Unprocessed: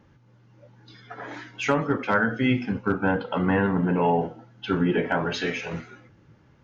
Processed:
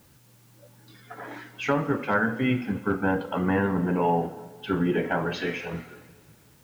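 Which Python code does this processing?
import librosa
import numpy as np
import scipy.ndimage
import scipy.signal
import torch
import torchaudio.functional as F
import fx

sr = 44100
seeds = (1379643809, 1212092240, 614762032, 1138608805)

p1 = fx.high_shelf(x, sr, hz=4700.0, db=-8.5)
p2 = fx.quant_dither(p1, sr, seeds[0], bits=8, dither='triangular')
p3 = p1 + (p2 * librosa.db_to_amplitude(-9.5))
p4 = fx.rev_plate(p3, sr, seeds[1], rt60_s=1.9, hf_ratio=0.9, predelay_ms=0, drr_db=14.5)
y = p4 * librosa.db_to_amplitude(-4.0)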